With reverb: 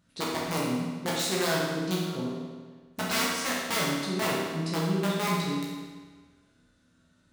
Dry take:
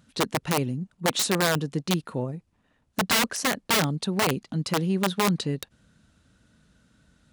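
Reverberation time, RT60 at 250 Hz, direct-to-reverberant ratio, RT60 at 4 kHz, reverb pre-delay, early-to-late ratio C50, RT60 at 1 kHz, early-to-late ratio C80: 1.5 s, 1.5 s, -6.0 dB, 1.3 s, 11 ms, -1.0 dB, 1.5 s, 1.5 dB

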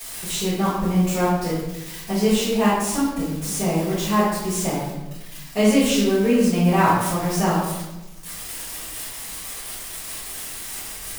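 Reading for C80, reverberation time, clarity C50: 3.0 dB, 1.0 s, -0.5 dB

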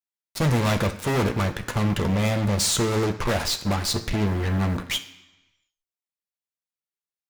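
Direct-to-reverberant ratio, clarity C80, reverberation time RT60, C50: 3.5 dB, 15.0 dB, 1.1 s, 12.5 dB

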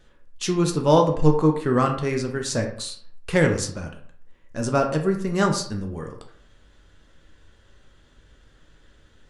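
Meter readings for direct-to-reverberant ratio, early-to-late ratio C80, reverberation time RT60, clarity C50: 3.0 dB, 12.0 dB, 0.60 s, 8.0 dB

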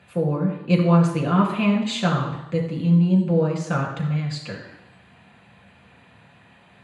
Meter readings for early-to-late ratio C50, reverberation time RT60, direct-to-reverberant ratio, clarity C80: 6.0 dB, 0.85 s, -1.0 dB, 8.0 dB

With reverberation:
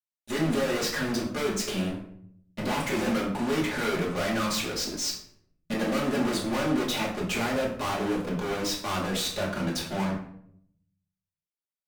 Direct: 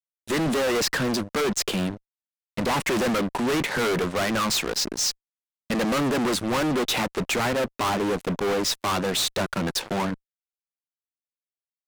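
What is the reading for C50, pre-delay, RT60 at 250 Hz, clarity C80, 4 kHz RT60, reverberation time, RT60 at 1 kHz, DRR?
6.0 dB, 3 ms, 0.90 s, 9.5 dB, 0.45 s, 0.65 s, 0.60 s, -4.5 dB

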